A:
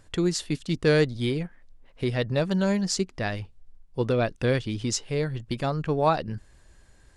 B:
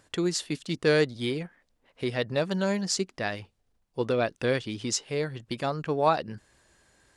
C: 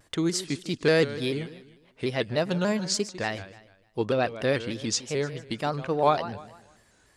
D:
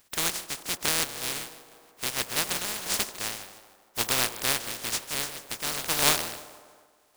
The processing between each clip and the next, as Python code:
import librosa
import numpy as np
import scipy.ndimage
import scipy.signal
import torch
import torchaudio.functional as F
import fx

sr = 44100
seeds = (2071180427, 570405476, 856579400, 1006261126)

y1 = fx.highpass(x, sr, hz=270.0, slope=6)
y2 = fx.echo_feedback(y1, sr, ms=152, feedback_pct=39, wet_db=-14.5)
y2 = fx.vibrato_shape(y2, sr, shape='square', rate_hz=3.4, depth_cents=100.0)
y2 = F.gain(torch.from_numpy(y2), 1.0).numpy()
y3 = fx.spec_flatten(y2, sr, power=0.13)
y3 = fx.echo_wet_bandpass(y3, sr, ms=79, feedback_pct=78, hz=590.0, wet_db=-14)
y3 = fx.tremolo_random(y3, sr, seeds[0], hz=3.5, depth_pct=55)